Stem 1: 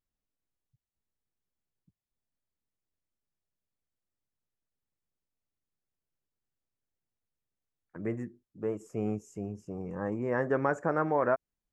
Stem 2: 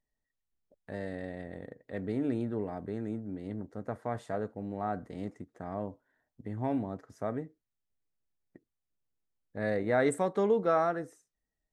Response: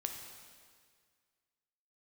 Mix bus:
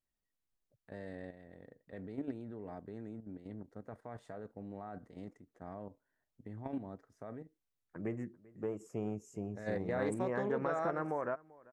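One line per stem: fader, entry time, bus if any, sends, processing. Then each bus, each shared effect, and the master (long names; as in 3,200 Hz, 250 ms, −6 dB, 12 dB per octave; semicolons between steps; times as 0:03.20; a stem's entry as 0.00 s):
−3.0 dB, 0.00 s, no send, echo send −23 dB, downward compressor 5 to 1, threshold −30 dBFS, peak gain reduction 8 dB
−5.5 dB, 0.00 s, no send, no echo send, high-shelf EQ 8,600 Hz −4 dB; output level in coarse steps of 10 dB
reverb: not used
echo: single-tap delay 391 ms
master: highs frequency-modulated by the lows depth 0.12 ms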